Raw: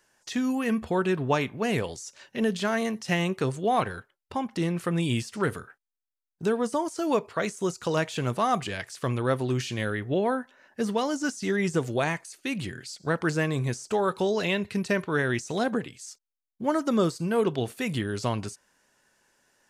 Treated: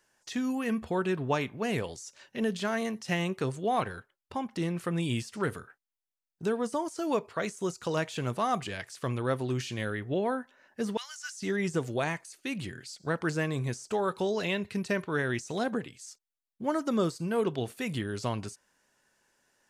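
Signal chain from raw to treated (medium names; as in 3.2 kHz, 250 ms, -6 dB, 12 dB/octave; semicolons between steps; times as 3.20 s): 10.97–11.40 s: high-pass 1.5 kHz 24 dB/octave; trim -4 dB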